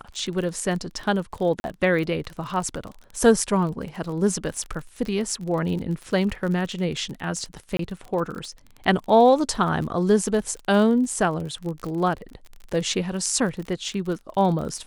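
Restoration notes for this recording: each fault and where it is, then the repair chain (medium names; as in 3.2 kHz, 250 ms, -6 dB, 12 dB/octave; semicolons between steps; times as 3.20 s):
crackle 36 per s -30 dBFS
1.60–1.64 s: dropout 41 ms
7.77–7.79 s: dropout 23 ms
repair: de-click; interpolate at 1.60 s, 41 ms; interpolate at 7.77 s, 23 ms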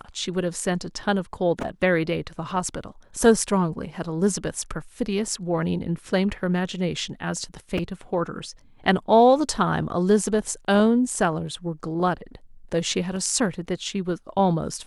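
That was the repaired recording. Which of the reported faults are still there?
nothing left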